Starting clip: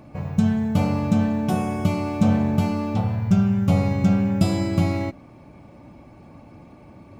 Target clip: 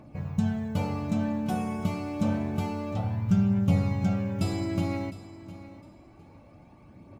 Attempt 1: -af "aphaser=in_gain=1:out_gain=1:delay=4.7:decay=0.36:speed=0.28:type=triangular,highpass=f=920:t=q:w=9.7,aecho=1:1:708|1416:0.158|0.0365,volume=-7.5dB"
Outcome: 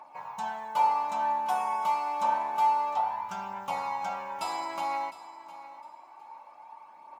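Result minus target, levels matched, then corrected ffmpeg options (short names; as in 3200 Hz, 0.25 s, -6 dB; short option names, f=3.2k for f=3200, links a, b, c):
1000 Hz band +14.5 dB
-af "aphaser=in_gain=1:out_gain=1:delay=4.7:decay=0.36:speed=0.28:type=triangular,aecho=1:1:708|1416:0.158|0.0365,volume=-7.5dB"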